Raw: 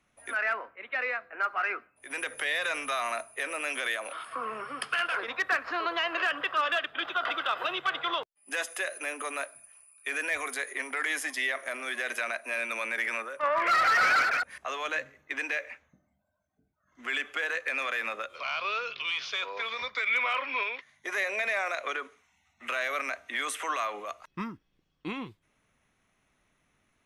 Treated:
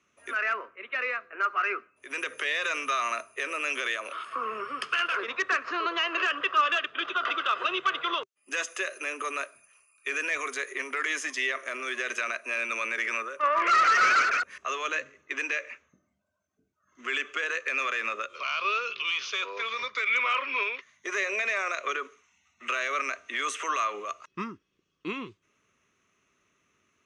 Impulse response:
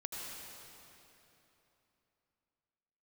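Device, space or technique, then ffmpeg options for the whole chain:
car door speaker: -af "highpass=83,equalizer=f=140:t=q:w=4:g=-4,equalizer=f=390:t=q:w=4:g=8,equalizer=f=790:t=q:w=4:g=-9,equalizer=f=1.2k:t=q:w=4:g=7,equalizer=f=2.7k:t=q:w=4:g=6,equalizer=f=6.3k:t=q:w=4:g=9,lowpass=f=8.3k:w=0.5412,lowpass=f=8.3k:w=1.3066,volume=-1dB"

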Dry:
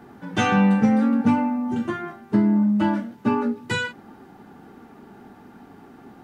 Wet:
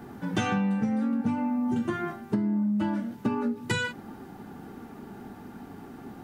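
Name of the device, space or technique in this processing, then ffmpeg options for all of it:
ASMR close-microphone chain: -af "lowshelf=f=240:g=6,acompressor=threshold=-24dB:ratio=10,highshelf=f=6.4k:g=7.5"

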